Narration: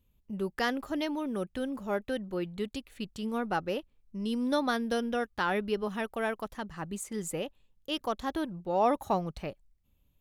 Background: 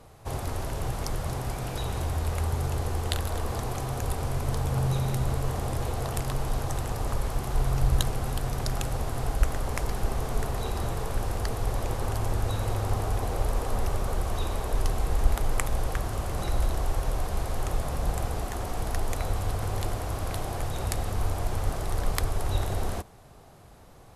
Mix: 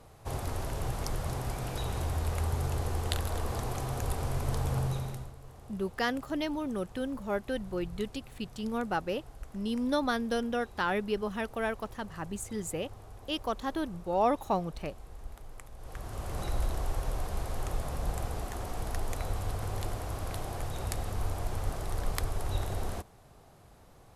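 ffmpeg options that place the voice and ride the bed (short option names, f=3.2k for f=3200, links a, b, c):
-filter_complex "[0:a]adelay=5400,volume=-0.5dB[a];[1:a]volume=13dB,afade=t=out:st=4.71:d=0.61:silence=0.125893,afade=t=in:st=15.78:d=0.59:silence=0.158489[b];[a][b]amix=inputs=2:normalize=0"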